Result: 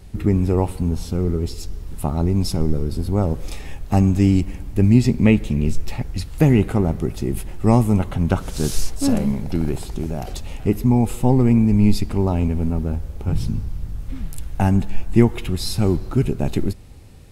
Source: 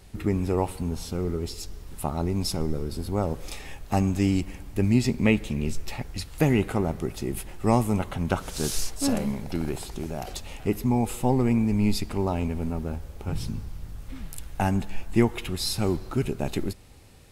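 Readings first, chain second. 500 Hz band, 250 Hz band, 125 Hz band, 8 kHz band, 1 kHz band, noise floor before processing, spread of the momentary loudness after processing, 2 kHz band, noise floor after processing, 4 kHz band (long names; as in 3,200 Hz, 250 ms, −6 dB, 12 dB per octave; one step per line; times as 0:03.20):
+4.5 dB, +7.0 dB, +9.0 dB, +1.0 dB, +2.5 dB, −44 dBFS, 13 LU, +1.5 dB, −35 dBFS, +1.0 dB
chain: low-shelf EQ 350 Hz +9 dB
level +1 dB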